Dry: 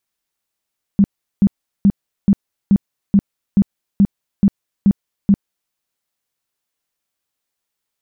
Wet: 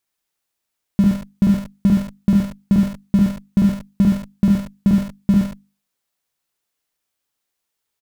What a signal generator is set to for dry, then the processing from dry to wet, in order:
tone bursts 199 Hz, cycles 10, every 0.43 s, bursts 11, −7 dBFS
mains-hum notches 50/100/150/200/250 Hz
in parallel at −5.5 dB: comparator with hysteresis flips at −29.5 dBFS
on the sum: single-tap delay 72 ms −4.5 dB

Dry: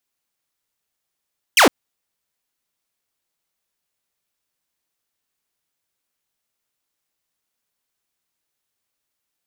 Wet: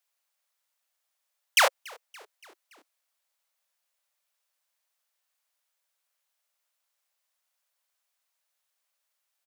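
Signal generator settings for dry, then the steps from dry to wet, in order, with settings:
single falling chirp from 3,300 Hz, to 220 Hz, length 0.11 s saw, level −6 dB
elliptic high-pass filter 540 Hz
brickwall limiter −9.5 dBFS
echo with shifted repeats 285 ms, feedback 59%, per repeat −60 Hz, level −24 dB

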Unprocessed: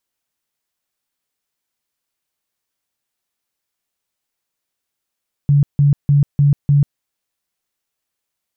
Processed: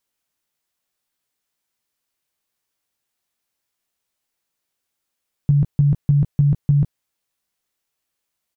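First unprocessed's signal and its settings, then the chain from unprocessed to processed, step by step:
tone bursts 143 Hz, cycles 20, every 0.30 s, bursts 5, −8.5 dBFS
double-tracking delay 18 ms −9 dB

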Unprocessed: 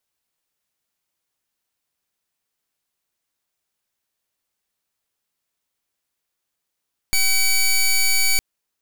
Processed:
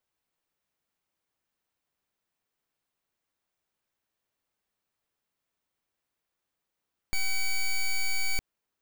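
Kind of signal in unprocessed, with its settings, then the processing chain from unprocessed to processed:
pulse wave 2,280 Hz, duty 13% −16.5 dBFS 1.26 s
parametric band 12,000 Hz −9.5 dB 2.8 octaves
brickwall limiter −23 dBFS

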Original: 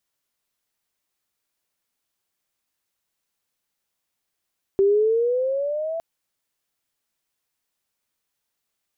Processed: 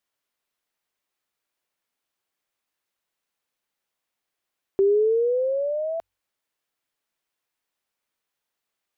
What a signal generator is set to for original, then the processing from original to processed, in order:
pitch glide with a swell sine, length 1.21 s, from 387 Hz, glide +9.5 semitones, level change −11.5 dB, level −13.5 dB
bass and treble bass −6 dB, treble −6 dB
hum removal 45.52 Hz, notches 2

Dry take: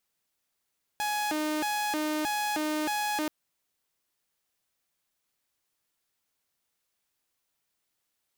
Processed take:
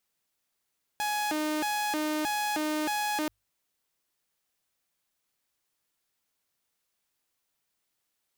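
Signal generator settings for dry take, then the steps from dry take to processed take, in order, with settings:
siren hi-lo 306–838 Hz 1.6 per second saw −25 dBFS 2.28 s
mains-hum notches 50/100 Hz

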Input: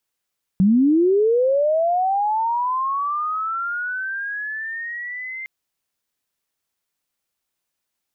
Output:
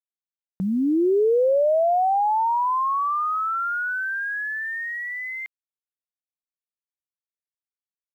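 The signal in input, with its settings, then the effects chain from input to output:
glide linear 180 Hz → 2,100 Hz −11.5 dBFS → −28.5 dBFS 4.86 s
bass and treble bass −13 dB, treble −8 dB
bit reduction 10 bits

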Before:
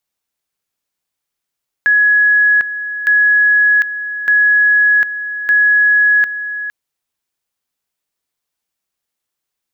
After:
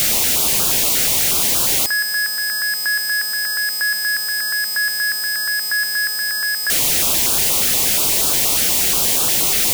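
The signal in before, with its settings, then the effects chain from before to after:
tone at two levels in turn 1,680 Hz −7.5 dBFS, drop 12 dB, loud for 0.75 s, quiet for 0.46 s, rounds 4
sign of each sample alone
notch on a step sequencer 8.4 Hz 1,000–2,000 Hz

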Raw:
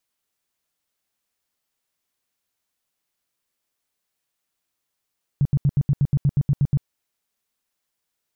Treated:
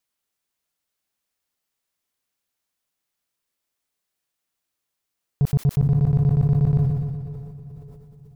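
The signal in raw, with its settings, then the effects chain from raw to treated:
tone bursts 141 Hz, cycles 6, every 0.12 s, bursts 12, −14 dBFS
leveller curve on the samples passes 1
feedback delay with all-pass diffusion 541 ms, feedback 41%, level −12 dB
level that may fall only so fast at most 32 dB per second

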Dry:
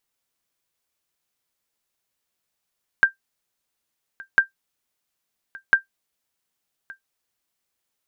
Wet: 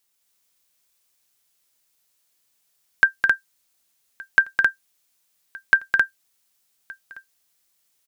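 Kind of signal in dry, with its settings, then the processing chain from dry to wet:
ping with an echo 1,580 Hz, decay 0.12 s, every 1.35 s, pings 3, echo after 1.17 s, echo −23.5 dB −5.5 dBFS
high-shelf EQ 2,800 Hz +9.5 dB
loudspeakers that aren't time-aligned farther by 72 metres −5 dB, 91 metres −3 dB

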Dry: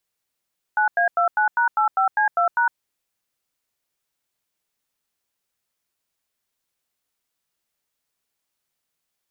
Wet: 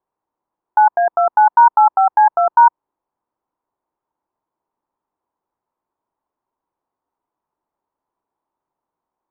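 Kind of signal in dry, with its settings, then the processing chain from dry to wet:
touch tones "9A29#85C2#", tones 109 ms, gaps 91 ms, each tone −18.5 dBFS
low-pass with resonance 950 Hz, resonance Q 4.9
parametric band 330 Hz +8.5 dB 0.87 octaves

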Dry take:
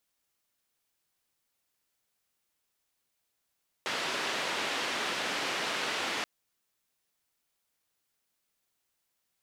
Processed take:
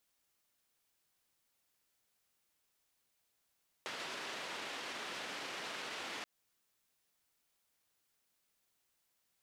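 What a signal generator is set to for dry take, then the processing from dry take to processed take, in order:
band-limited noise 250–3,200 Hz, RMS −33 dBFS 2.38 s
brickwall limiter −29.5 dBFS
downward compressor 2.5 to 1, threshold −43 dBFS

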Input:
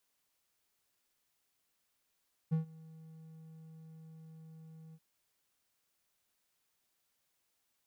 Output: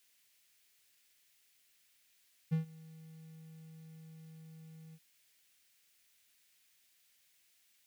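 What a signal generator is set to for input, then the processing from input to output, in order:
note with an ADSR envelope triangle 160 Hz, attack 21 ms, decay 119 ms, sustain −24 dB, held 2.43 s, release 50 ms −24.5 dBFS
high shelf with overshoot 1,500 Hz +9 dB, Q 1.5

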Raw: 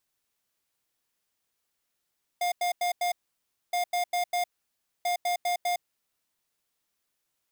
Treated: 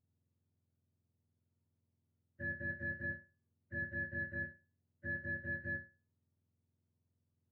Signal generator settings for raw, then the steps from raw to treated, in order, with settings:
beeps in groups square 708 Hz, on 0.11 s, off 0.09 s, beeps 4, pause 0.61 s, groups 3, −27 dBFS
frequency axis turned over on the octave scale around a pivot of 1,100 Hz
resonators tuned to a chord D#2 minor, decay 0.31 s

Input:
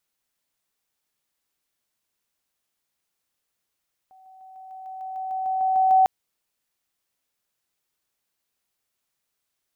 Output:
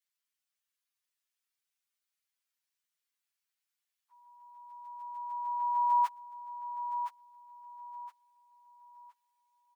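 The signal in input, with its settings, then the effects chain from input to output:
level staircase 757 Hz −49 dBFS, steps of 3 dB, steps 13, 0.15 s 0.00 s
partials spread apart or drawn together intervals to 122%
high-pass filter 1,500 Hz 12 dB per octave
repeating echo 1,017 ms, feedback 31%, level −8.5 dB

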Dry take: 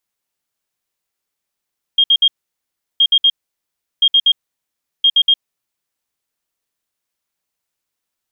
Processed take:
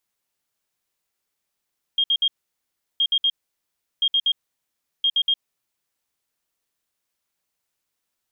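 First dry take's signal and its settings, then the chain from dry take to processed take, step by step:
beeps in groups sine 3,230 Hz, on 0.06 s, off 0.06 s, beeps 3, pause 0.72 s, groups 4, −7.5 dBFS
brickwall limiter −16 dBFS

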